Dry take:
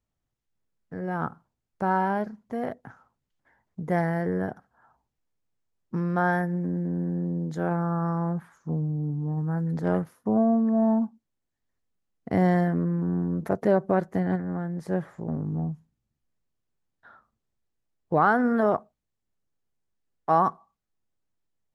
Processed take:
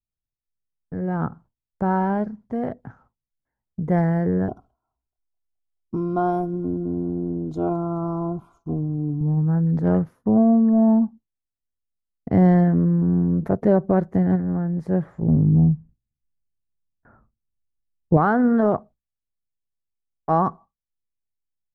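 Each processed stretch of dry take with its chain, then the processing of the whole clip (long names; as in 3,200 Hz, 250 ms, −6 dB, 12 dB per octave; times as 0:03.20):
0:04.48–0:09.21: Butterworth band-reject 1,800 Hz, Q 1.5 + comb filter 2.9 ms, depth 64% + delay with a high-pass on its return 213 ms, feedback 69%, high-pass 1,600 Hz, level −21 dB
0:15.22–0:18.17: tilt shelving filter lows +6.5 dB, about 650 Hz + bad sample-rate conversion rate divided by 8×, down none, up filtered
whole clip: noise gate with hold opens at −48 dBFS; spectral tilt −3 dB per octave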